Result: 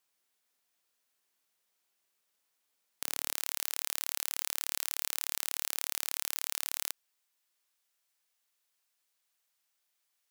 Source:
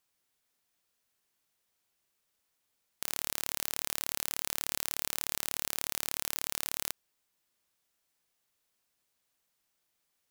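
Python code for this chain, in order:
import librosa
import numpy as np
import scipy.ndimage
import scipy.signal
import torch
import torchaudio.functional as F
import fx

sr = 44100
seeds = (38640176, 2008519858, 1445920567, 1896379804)

y = fx.highpass(x, sr, hz=fx.steps((0.0, 320.0), (3.34, 1000.0)), slope=6)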